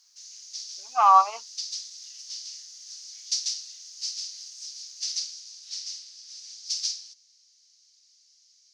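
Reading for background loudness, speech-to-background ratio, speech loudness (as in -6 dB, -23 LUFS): -33.5 LUFS, 15.0 dB, -18.5 LUFS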